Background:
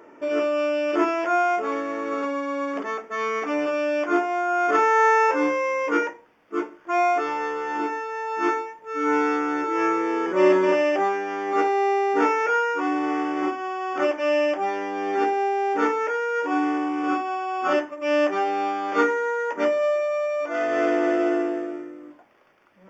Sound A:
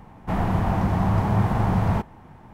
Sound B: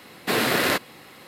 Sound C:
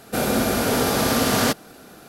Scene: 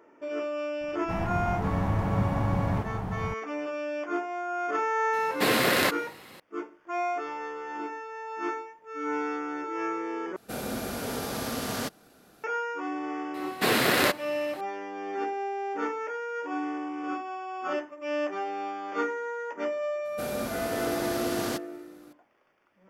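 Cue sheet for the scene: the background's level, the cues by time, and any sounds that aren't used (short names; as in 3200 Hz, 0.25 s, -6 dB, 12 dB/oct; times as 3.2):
background -9 dB
0.81 add A -8 dB + echo 0.54 s -4 dB
5.13 add B -2 dB
10.36 replace with C -12.5 dB
13.34 add B -1.5 dB
20.05 add C -13.5 dB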